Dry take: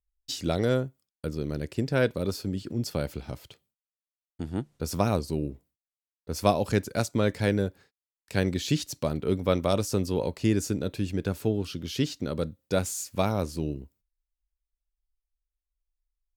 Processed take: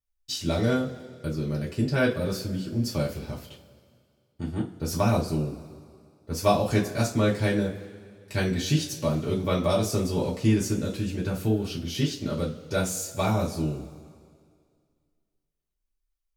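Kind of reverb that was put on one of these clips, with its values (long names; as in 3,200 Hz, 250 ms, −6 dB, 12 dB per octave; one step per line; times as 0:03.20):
coupled-rooms reverb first 0.24 s, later 2.1 s, from −21 dB, DRR −5.5 dB
level −4.5 dB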